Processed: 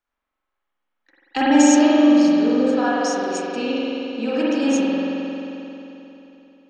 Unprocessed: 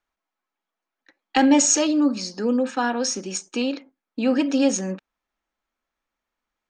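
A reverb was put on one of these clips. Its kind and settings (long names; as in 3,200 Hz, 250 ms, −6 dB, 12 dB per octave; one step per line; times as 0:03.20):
spring reverb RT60 3.3 s, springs 44 ms, chirp 45 ms, DRR −8.5 dB
level −5 dB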